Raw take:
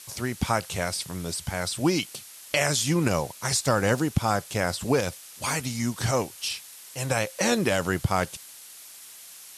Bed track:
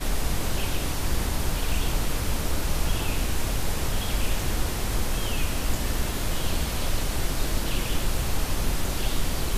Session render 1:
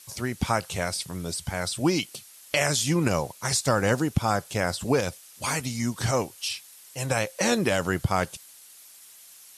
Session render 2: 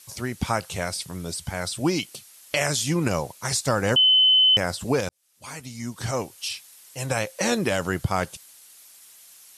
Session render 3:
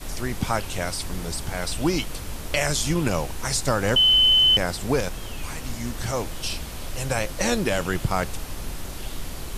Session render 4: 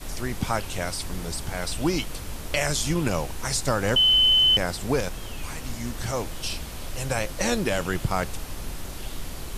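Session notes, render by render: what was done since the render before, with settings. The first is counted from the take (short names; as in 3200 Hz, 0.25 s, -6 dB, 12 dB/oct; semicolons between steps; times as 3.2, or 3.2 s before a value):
denoiser 6 dB, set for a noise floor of -46 dBFS
3.96–4.57 bleep 3040 Hz -13.5 dBFS; 5.09–6.47 fade in
add bed track -7 dB
gain -1.5 dB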